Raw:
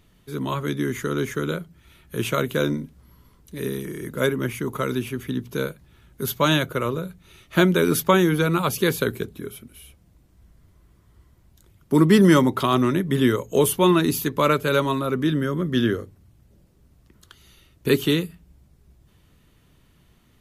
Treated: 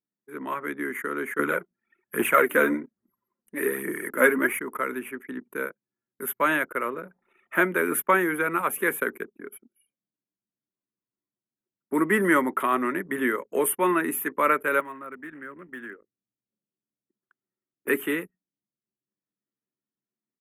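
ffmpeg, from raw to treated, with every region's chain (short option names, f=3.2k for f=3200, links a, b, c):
-filter_complex "[0:a]asettb=1/sr,asplit=3[a][b][c];[a]atrim=end=1.394[d];[b]atrim=start=1.39:end=4.59,asetpts=PTS-STARTPTS,afade=t=in:d=0.004:c=qsin,afade=t=out:st=3.196:d=0.004:c=qsin,aphaser=in_gain=1:out_gain=1:delay=4.7:decay=0.47:speed=1.2:type=triangular,acontrast=48[e];[c]atrim=start=4.586[f];[d][e]acrossfade=d=0.004:c1=hsin:c2=qsin[g];[g][f]acrossfade=d=0.004:c1=qsin:c2=hsin,asettb=1/sr,asplit=3[h][i][j];[h]atrim=end=7.024[k];[i]atrim=start=7.02:end=7.57,asetpts=PTS-STARTPTS,afade=t=in:d=0.004:c=qsin,afade=t=out:st=0.546:d=0.004:c=qsin,aeval=exprs='val(0)+0.5*0.00668*sgn(val(0))':c=same,adynamicequalizer=threshold=0.00251:dfrequency=810:dqfactor=1:tfrequency=810:tqfactor=1:attack=5:release=100:ratio=0.375:range=3:mode=boostabove:tftype=bell[l];[j]atrim=start=7.566[m];[k][l]acrossfade=d=0.004:c1=hsin:c2=qsin[n];[n][m]acrossfade=d=0.004:c1=qsin:c2=hsin,asettb=1/sr,asplit=3[o][p][q];[o]atrim=end=14.804[r];[p]atrim=start=14.8:end=17.88,asetpts=PTS-STARTPTS,afade=t=in:d=0.004:c=qsin,afade=t=out:st=3.076:d=0.004:c=qsin,equalizer=f=3.1k:w=0.89:g=-7,acrusher=bits=5:mode=log:mix=0:aa=0.000001,acrossover=split=130|1500|3000[s][t][u][v];[s]acompressor=threshold=-40dB:ratio=3[w];[t]acompressor=threshold=-39dB:ratio=3[x];[u]acompressor=threshold=-42dB:ratio=3[y];[v]acompressor=threshold=-52dB:ratio=3[z];[w][x][y][z]amix=inputs=4:normalize=0[aa];[q]atrim=start=17.876[ab];[r][aa]acrossfade=d=0.004:c1=hsin:c2=qsin[ac];[ac][ab]acrossfade=d=0.004:c1=qsin:c2=hsin,highpass=f=240:w=0.5412,highpass=f=240:w=1.3066,anlmdn=0.631,firequalizer=gain_entry='entry(420,0);entry(1900,11);entry(4400,-27);entry(9100,5)':delay=0.05:min_phase=1,volume=-6dB"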